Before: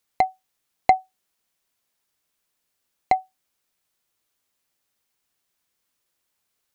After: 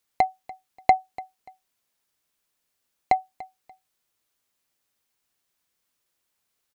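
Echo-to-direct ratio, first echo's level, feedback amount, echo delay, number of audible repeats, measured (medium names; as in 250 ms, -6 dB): -19.0 dB, -19.5 dB, 26%, 291 ms, 2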